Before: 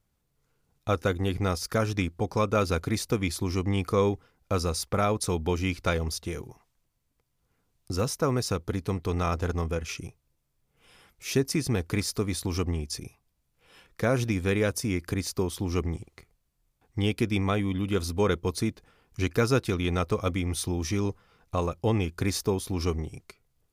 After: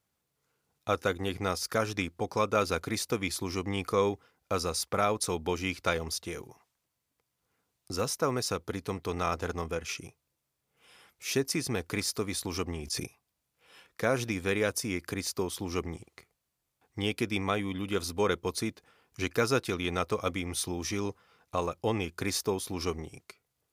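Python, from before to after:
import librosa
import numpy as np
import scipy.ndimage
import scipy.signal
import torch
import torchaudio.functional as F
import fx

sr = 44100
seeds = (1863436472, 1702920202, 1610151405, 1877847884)

y = scipy.signal.sosfilt(scipy.signal.butter(2, 65.0, 'highpass', fs=sr, output='sos'), x)
y = fx.low_shelf(y, sr, hz=260.0, db=-10.0)
y = fx.sustainer(y, sr, db_per_s=50.0, at=(12.66, 13.06))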